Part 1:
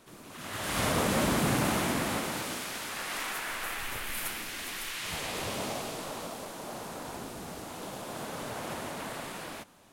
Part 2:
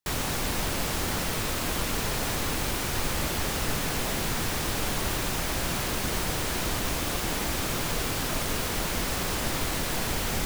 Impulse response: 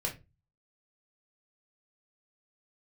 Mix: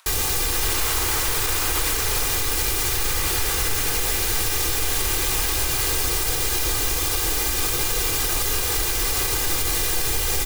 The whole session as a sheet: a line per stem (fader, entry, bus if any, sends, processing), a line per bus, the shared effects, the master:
+3.0 dB, 0.00 s, no send, high-pass filter 910 Hz 24 dB per octave; upward compression, threshold −56 dBFS
−1.5 dB, 0.00 s, send −10.5 dB, high-shelf EQ 3,900 Hz +11 dB; comb filter 2.5 ms, depth 73%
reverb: on, RT60 0.25 s, pre-delay 3 ms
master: brickwall limiter −12 dBFS, peak gain reduction 5.5 dB

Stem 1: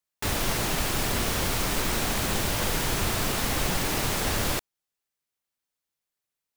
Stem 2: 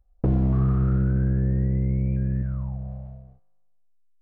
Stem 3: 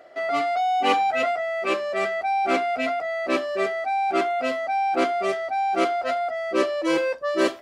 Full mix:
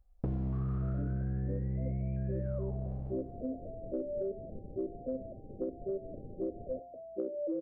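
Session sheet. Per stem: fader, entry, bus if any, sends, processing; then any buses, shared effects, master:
−12.0 dB, 2.20 s, bus A, no send, wavefolder on the positive side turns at −26 dBFS; amplitude modulation by smooth noise, depth 50%
−2.5 dB, 0.00 s, no bus, no send, brickwall limiter −19 dBFS, peak gain reduction 5 dB
−3.0 dB, 0.65 s, bus A, no send, no processing
bus A: 0.0 dB, Butterworth low-pass 590 Hz 96 dB per octave; downward compressor, threshold −30 dBFS, peak gain reduction 10 dB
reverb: not used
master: downward compressor, threshold −31 dBFS, peak gain reduction 8 dB

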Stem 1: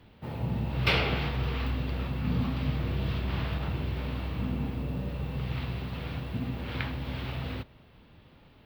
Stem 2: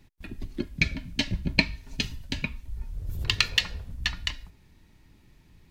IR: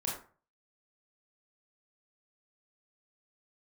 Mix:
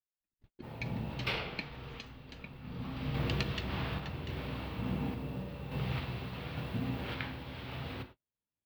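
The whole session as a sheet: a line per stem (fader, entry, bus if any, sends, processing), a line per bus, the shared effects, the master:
0:01.18 −6.5 dB → 0:01.65 −14 dB → 0:02.47 −14 dB → 0:03.07 −1.5 dB, 0.40 s, send −9 dB, no processing
−13.5 dB, 0.00 s, no send, high-shelf EQ 6,200 Hz −10.5 dB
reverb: on, RT60 0.40 s, pre-delay 23 ms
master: noise gate −44 dBFS, range −41 dB; low-shelf EQ 170 Hz −6 dB; sample-and-hold tremolo

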